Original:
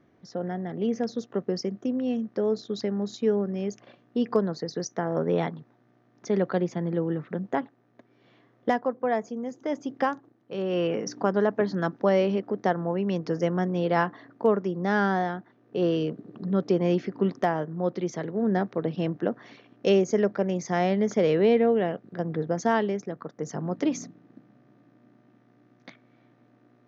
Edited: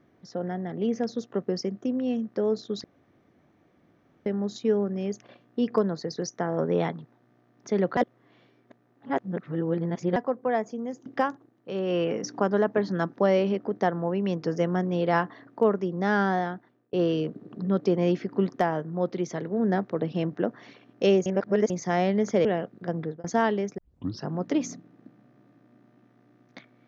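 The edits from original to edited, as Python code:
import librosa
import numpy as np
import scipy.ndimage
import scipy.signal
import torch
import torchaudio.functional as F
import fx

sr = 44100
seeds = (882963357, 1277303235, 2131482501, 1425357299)

y = fx.edit(x, sr, fx.insert_room_tone(at_s=2.84, length_s=1.42),
    fx.reverse_span(start_s=6.55, length_s=2.19),
    fx.cut(start_s=9.64, length_s=0.25),
    fx.fade_out_span(start_s=15.26, length_s=0.5, curve='qsin'),
    fx.reverse_span(start_s=20.09, length_s=0.44),
    fx.cut(start_s=21.28, length_s=0.48),
    fx.fade_out_span(start_s=22.3, length_s=0.25),
    fx.tape_start(start_s=23.09, length_s=0.48), tone=tone)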